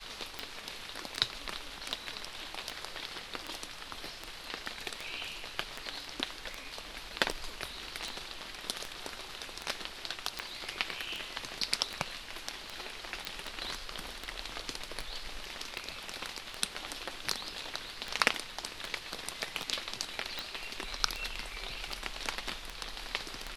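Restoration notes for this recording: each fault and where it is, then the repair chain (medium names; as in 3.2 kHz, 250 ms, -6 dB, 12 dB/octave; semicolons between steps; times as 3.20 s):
tick 78 rpm -20 dBFS
13.25 s: pop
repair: de-click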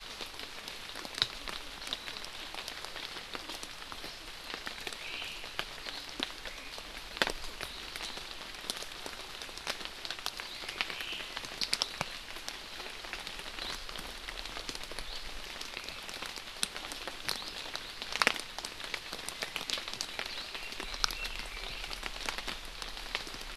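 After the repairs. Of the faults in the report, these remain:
nothing left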